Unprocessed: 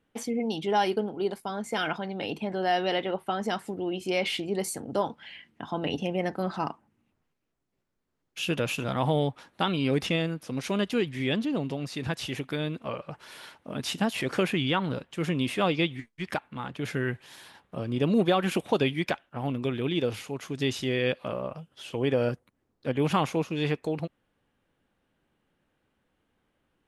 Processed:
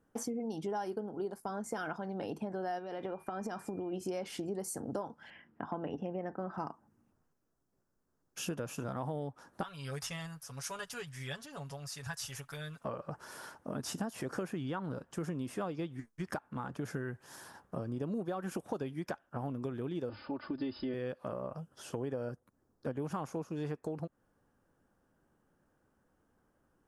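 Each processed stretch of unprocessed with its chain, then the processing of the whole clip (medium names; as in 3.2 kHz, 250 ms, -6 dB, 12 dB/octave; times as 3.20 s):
2.78–3.92 s: peaking EQ 10 kHz -4.5 dB 1 oct + compression 10:1, threshold -31 dBFS + whistle 2.4 kHz -53 dBFS
5.30–6.58 s: Savitzky-Golay filter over 25 samples + bass shelf 130 Hz -5 dB
9.63–12.85 s: amplifier tone stack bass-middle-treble 10-0-10 + comb 7.1 ms, depth 77%
20.09–20.94 s: brick-wall FIR low-pass 5.2 kHz + comb 3.4 ms, depth 86%
whole clip: high-order bell 2.9 kHz -13 dB 1.3 oct; compression 6:1, threshold -36 dBFS; trim +1 dB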